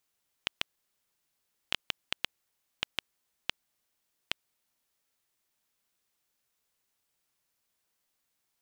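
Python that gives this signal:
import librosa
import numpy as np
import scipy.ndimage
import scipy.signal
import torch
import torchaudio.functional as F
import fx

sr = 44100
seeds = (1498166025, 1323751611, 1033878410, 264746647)

y = fx.geiger_clicks(sr, seeds[0], length_s=4.18, per_s=2.7, level_db=-9.0)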